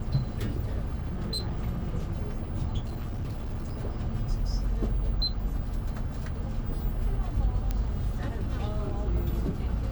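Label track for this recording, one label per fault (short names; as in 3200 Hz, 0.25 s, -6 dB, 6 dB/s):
0.980000	1.580000	clipped -27 dBFS
2.850000	3.750000	clipped -29 dBFS
4.270000	4.270000	gap 2 ms
7.710000	7.710000	pop -16 dBFS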